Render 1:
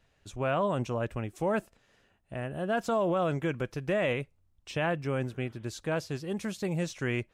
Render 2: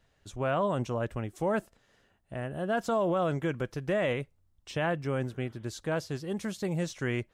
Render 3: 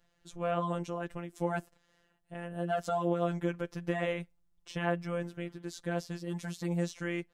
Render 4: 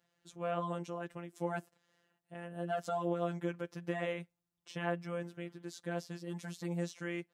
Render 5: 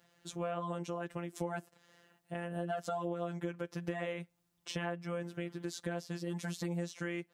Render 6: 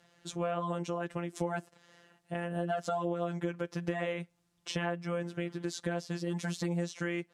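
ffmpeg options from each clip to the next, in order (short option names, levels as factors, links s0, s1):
-af "equalizer=f=2500:t=o:w=0.22:g=-5.5"
-af "afftfilt=real='hypot(re,im)*cos(PI*b)':imag='0':win_size=1024:overlap=0.75"
-af "highpass=130,volume=0.631"
-af "acompressor=threshold=0.00501:ratio=4,volume=3.16"
-af "lowpass=9800,volume=1.58"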